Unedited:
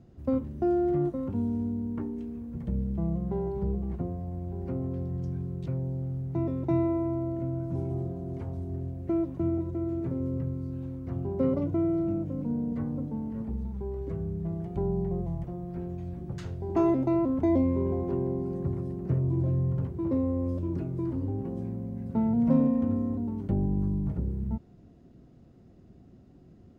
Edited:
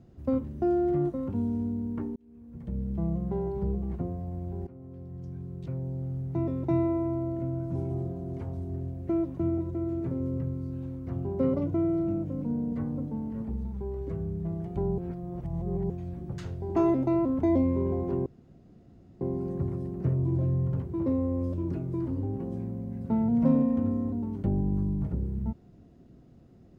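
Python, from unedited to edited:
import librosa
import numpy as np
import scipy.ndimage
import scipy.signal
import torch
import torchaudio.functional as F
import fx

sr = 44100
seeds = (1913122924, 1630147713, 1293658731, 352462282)

y = fx.edit(x, sr, fx.fade_in_span(start_s=2.16, length_s=0.85),
    fx.fade_in_from(start_s=4.67, length_s=1.54, floor_db=-18.5),
    fx.reverse_span(start_s=14.98, length_s=0.92),
    fx.insert_room_tone(at_s=18.26, length_s=0.95), tone=tone)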